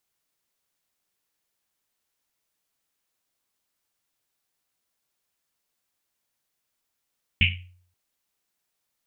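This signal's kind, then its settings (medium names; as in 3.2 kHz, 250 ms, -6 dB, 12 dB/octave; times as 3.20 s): Risset drum length 0.53 s, pitch 90 Hz, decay 0.59 s, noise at 2.6 kHz, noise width 870 Hz, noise 55%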